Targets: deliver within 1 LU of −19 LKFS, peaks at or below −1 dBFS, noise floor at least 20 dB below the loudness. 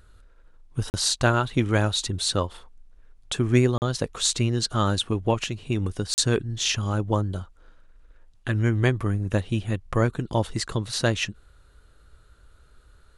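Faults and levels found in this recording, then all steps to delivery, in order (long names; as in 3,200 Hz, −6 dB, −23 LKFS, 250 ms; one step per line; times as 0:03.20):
number of dropouts 3; longest dropout 39 ms; integrated loudness −25.0 LKFS; sample peak −4.5 dBFS; target loudness −19.0 LKFS
→ repair the gap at 0:00.90/0:03.78/0:06.14, 39 ms
level +6 dB
brickwall limiter −1 dBFS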